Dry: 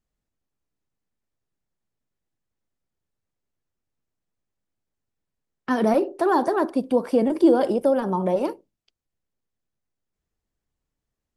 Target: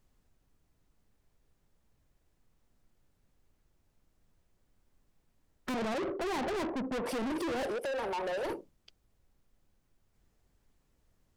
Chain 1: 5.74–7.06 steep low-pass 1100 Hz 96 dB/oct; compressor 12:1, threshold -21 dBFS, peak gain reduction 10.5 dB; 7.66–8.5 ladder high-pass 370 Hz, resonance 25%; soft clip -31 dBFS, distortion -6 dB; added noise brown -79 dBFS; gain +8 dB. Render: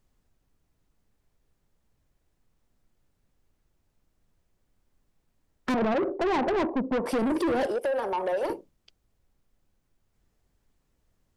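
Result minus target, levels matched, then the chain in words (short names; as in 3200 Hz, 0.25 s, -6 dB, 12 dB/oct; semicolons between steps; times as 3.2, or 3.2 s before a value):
soft clip: distortion -4 dB
5.74–7.06 steep low-pass 1100 Hz 96 dB/oct; compressor 12:1, threshold -21 dBFS, peak gain reduction 10.5 dB; 7.66–8.5 ladder high-pass 370 Hz, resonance 25%; soft clip -40.5 dBFS, distortion -3 dB; added noise brown -79 dBFS; gain +8 dB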